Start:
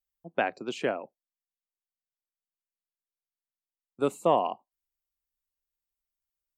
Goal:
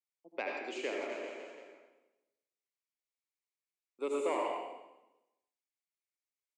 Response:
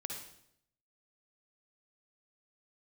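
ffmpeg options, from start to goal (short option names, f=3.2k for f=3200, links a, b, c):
-filter_complex "[0:a]asoftclip=type=tanh:threshold=-14.5dB,highpass=f=310:w=0.5412,highpass=f=310:w=1.3066,equalizer=f=700:t=q:w=4:g=-8,equalizer=f=1.5k:t=q:w=4:g=-8,equalizer=f=2.2k:t=q:w=4:g=9,equalizer=f=3.2k:t=q:w=4:g=-3,lowpass=f=9.2k:w=0.5412,lowpass=f=9.2k:w=1.3066,asplit=3[a][b][c];[a]afade=t=out:st=1:d=0.02[d];[b]aecho=1:1:120|252|397.2|556.9|732.6:0.631|0.398|0.251|0.158|0.1,afade=t=in:st=1:d=0.02,afade=t=out:st=4.26:d=0.02[e];[c]afade=t=in:st=4.26:d=0.02[f];[d][e][f]amix=inputs=3:normalize=0[g];[1:a]atrim=start_sample=2205,asetrate=31311,aresample=44100[h];[g][h]afir=irnorm=-1:irlink=0,volume=-5.5dB"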